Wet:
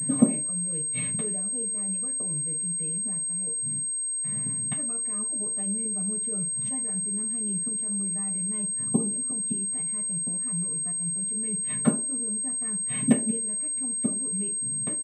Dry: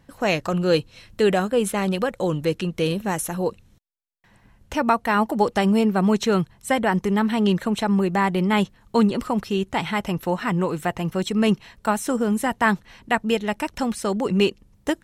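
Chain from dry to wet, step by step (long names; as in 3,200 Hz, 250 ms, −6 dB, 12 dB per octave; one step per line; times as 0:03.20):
loose part that buzzes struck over −33 dBFS, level −29 dBFS
comb filter 6.7 ms, depth 72%
gate with flip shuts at −21 dBFS, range −35 dB
convolution reverb RT60 0.45 s, pre-delay 3 ms, DRR −7 dB
switching amplifier with a slow clock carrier 8,400 Hz
level −7 dB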